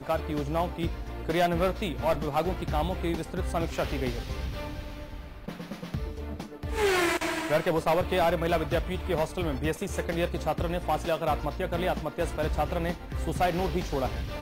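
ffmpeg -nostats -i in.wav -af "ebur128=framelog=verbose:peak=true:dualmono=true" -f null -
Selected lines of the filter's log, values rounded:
Integrated loudness:
  I:         -26.3 LUFS
  Threshold: -36.6 LUFS
Loudness range:
  LRA:         6.1 LU
  Threshold: -46.6 LUFS
  LRA low:   -30.4 LUFS
  LRA high:  -24.3 LUFS
True peak:
  Peak:      -16.4 dBFS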